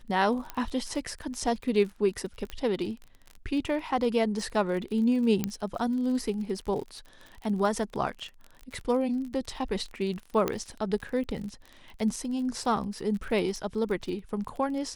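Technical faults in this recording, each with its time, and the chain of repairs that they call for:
crackle 36 per s -36 dBFS
0.50 s: pop -19 dBFS
2.50 s: pop -21 dBFS
5.44 s: pop -13 dBFS
10.48 s: pop -13 dBFS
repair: de-click

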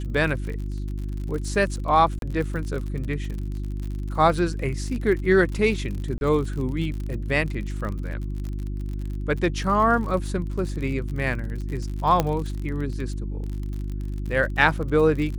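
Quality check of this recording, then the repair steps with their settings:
crackle 48 per s -31 dBFS
hum 50 Hz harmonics 7 -29 dBFS
2.19–2.22 s: dropout 32 ms
6.18–6.21 s: dropout 31 ms
12.20 s: pop -7 dBFS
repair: de-click; de-hum 50 Hz, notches 7; interpolate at 2.19 s, 32 ms; interpolate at 6.18 s, 31 ms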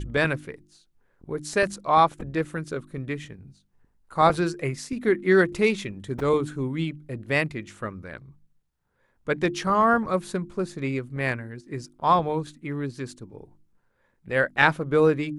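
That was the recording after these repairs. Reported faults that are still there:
nothing left

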